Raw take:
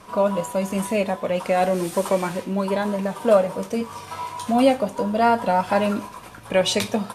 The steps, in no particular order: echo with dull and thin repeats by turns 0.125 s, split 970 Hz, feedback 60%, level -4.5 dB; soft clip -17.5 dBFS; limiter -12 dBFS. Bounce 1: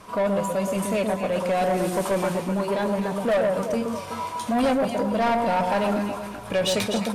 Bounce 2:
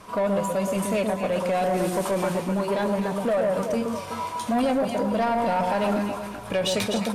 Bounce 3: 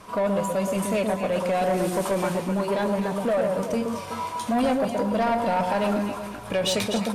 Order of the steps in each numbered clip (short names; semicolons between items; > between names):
echo with dull and thin repeats by turns > soft clip > limiter; echo with dull and thin repeats by turns > limiter > soft clip; limiter > echo with dull and thin repeats by turns > soft clip